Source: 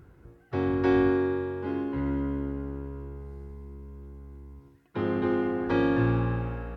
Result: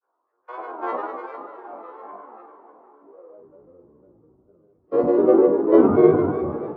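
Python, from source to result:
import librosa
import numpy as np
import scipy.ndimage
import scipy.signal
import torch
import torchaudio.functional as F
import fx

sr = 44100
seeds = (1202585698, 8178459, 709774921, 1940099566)

y = fx.spec_trails(x, sr, decay_s=2.96)
y = fx.filter_sweep_highpass(y, sr, from_hz=880.0, to_hz=150.0, start_s=2.86, end_s=3.66, q=1.1)
y = fx.granulator(y, sr, seeds[0], grain_ms=100.0, per_s=20.0, spray_ms=100.0, spread_st=7)
y = fx.band_shelf(y, sr, hz=650.0, db=9.0, octaves=2.3)
y = fx.doubler(y, sr, ms=45.0, db=-7.5)
y = fx.echo_diffused(y, sr, ms=457, feedback_pct=53, wet_db=-12.0)
y = fx.spectral_expand(y, sr, expansion=1.5)
y = F.gain(torch.from_numpy(y), 1.0).numpy()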